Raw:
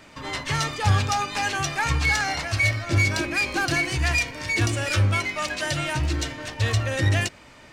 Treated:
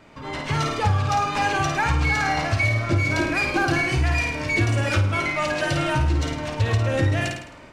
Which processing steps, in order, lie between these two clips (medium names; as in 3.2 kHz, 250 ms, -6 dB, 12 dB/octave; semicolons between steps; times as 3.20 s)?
treble shelf 2.6 kHz -11.5 dB; on a send: flutter echo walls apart 9.1 m, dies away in 0.61 s; on the sum: compression 10:1, threshold -22 dBFS, peak gain reduction 9 dB; band-stop 1.8 kHz, Q 24; level rider gain up to 5.5 dB